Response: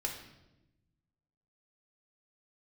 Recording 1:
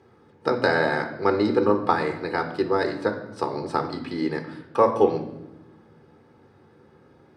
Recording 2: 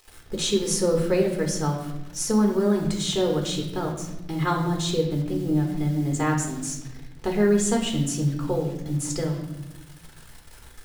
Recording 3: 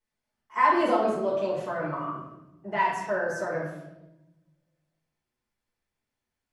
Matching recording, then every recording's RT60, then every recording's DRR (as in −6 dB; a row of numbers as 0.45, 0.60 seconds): 2; 1.0, 1.0, 0.95 seconds; 5.5, 0.0, −9.5 decibels